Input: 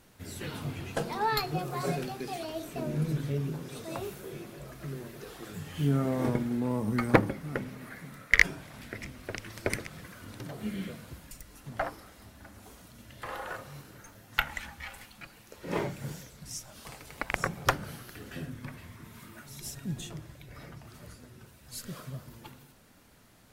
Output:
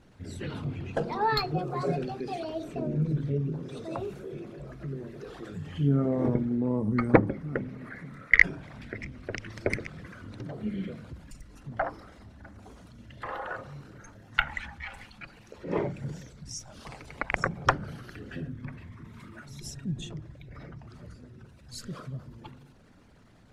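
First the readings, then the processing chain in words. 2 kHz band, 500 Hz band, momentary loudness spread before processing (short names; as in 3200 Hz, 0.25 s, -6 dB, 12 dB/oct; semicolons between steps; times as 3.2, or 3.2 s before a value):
+2.5 dB, +3.0 dB, 20 LU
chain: formant sharpening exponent 1.5; LPF 7000 Hz 12 dB/oct; gain +2.5 dB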